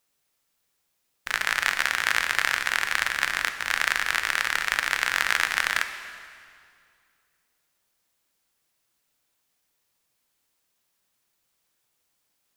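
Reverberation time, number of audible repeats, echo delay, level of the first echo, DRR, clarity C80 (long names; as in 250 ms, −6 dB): 2.3 s, no echo audible, no echo audible, no echo audible, 7.5 dB, 10.0 dB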